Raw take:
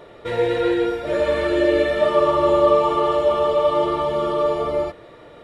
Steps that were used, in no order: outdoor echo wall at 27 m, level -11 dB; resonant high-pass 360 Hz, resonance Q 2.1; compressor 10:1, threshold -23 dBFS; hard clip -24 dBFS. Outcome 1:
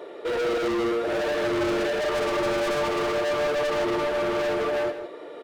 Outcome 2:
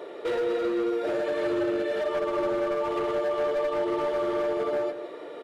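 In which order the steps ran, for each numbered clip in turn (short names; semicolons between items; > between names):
resonant high-pass > hard clip > compressor > outdoor echo; resonant high-pass > compressor > hard clip > outdoor echo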